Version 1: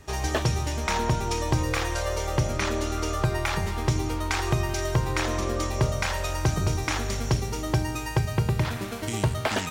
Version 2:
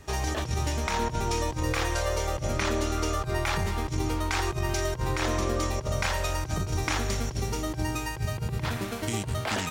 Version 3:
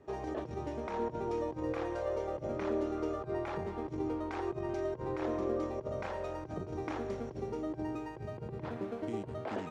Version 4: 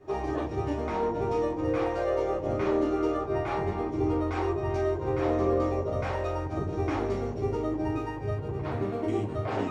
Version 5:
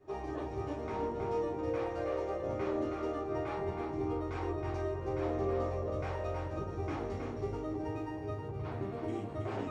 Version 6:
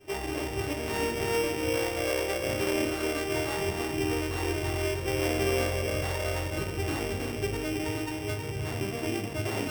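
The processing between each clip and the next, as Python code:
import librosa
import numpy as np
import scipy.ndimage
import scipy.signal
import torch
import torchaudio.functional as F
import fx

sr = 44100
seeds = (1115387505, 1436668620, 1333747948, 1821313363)

y1 = fx.over_compress(x, sr, threshold_db=-26.0, ratio=-0.5)
y1 = F.gain(torch.from_numpy(y1), -1.0).numpy()
y2 = fx.bandpass_q(y1, sr, hz=410.0, q=1.2)
y2 = F.gain(torch.from_numpy(y2), -1.5).numpy()
y3 = fx.room_shoebox(y2, sr, seeds[0], volume_m3=140.0, walls='furnished', distance_m=3.2)
y4 = y3 + 10.0 ** (-5.5 / 20.0) * np.pad(y3, (int(320 * sr / 1000.0), 0))[:len(y3)]
y4 = F.gain(torch.from_numpy(y4), -8.5).numpy()
y5 = np.r_[np.sort(y4[:len(y4) // 16 * 16].reshape(-1, 16), axis=1).ravel(), y4[len(y4) // 16 * 16:]]
y5 = F.gain(torch.from_numpy(y5), 6.0).numpy()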